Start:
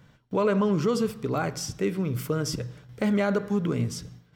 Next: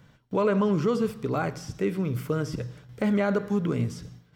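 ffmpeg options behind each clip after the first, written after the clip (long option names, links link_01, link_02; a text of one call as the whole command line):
ffmpeg -i in.wav -filter_complex "[0:a]acrossover=split=2700[link_01][link_02];[link_02]acompressor=threshold=-44dB:ratio=4:attack=1:release=60[link_03];[link_01][link_03]amix=inputs=2:normalize=0" out.wav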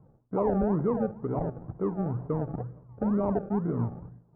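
ffmpeg -i in.wav -af "acrusher=samples=35:mix=1:aa=0.000001:lfo=1:lforange=21:lforate=2.1,lowpass=frequency=1000:width=0.5412,lowpass=frequency=1000:width=1.3066,volume=-2dB" out.wav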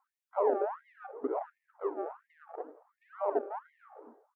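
ffmpeg -i in.wav -filter_complex "[0:a]asplit=2[link_01][link_02];[link_02]adelay=270,lowpass=frequency=950:poles=1,volume=-17.5dB,asplit=2[link_03][link_04];[link_04]adelay=270,lowpass=frequency=950:poles=1,volume=0.36,asplit=2[link_05][link_06];[link_06]adelay=270,lowpass=frequency=950:poles=1,volume=0.36[link_07];[link_01][link_03][link_05][link_07]amix=inputs=4:normalize=0,afftfilt=real='re*gte(b*sr/1024,250*pow(1800/250,0.5+0.5*sin(2*PI*1.4*pts/sr)))':imag='im*gte(b*sr/1024,250*pow(1800/250,0.5+0.5*sin(2*PI*1.4*pts/sr)))':win_size=1024:overlap=0.75" out.wav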